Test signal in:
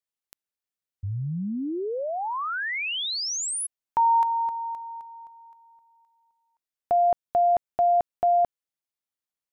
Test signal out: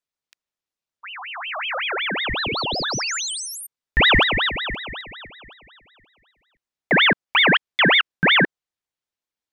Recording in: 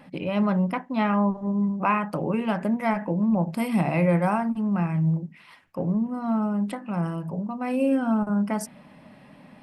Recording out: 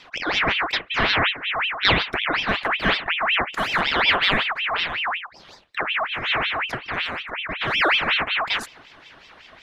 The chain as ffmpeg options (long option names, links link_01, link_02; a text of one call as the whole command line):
ffmpeg -i in.wav -filter_complex "[0:a]acrossover=split=240 6200:gain=0.251 1 0.251[link_01][link_02][link_03];[link_01][link_02][link_03]amix=inputs=3:normalize=0,aeval=exprs='0.299*(cos(1*acos(clip(val(0)/0.299,-1,1)))-cos(1*PI/2))+0.00335*(cos(3*acos(clip(val(0)/0.299,-1,1)))-cos(3*PI/2))+0.00211*(cos(6*acos(clip(val(0)/0.299,-1,1)))-cos(6*PI/2))':channel_layout=same,aeval=exprs='val(0)*sin(2*PI*1900*n/s+1900*0.55/5.4*sin(2*PI*5.4*n/s))':channel_layout=same,volume=8dB" out.wav